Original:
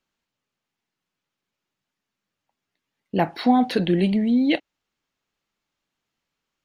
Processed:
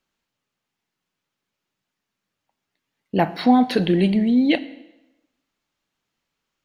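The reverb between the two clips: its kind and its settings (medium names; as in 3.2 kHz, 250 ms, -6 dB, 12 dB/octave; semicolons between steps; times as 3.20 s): plate-style reverb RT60 0.99 s, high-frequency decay 0.9×, DRR 14.5 dB; trim +2 dB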